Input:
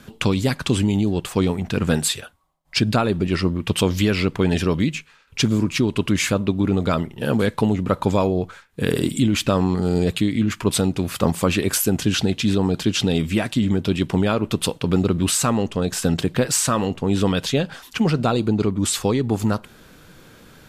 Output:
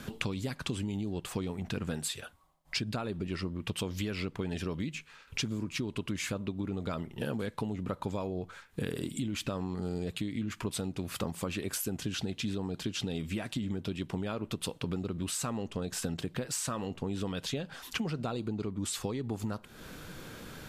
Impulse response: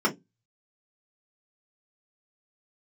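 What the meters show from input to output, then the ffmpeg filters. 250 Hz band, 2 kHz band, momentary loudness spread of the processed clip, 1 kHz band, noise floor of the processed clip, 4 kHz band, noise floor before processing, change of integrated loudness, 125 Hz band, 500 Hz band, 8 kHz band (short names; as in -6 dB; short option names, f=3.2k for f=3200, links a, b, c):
-15.5 dB, -13.0 dB, 4 LU, -15.5 dB, -57 dBFS, -13.0 dB, -51 dBFS, -15.0 dB, -15.0 dB, -15.5 dB, -13.5 dB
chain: -af "acompressor=threshold=-34dB:ratio=6,volume=1dB"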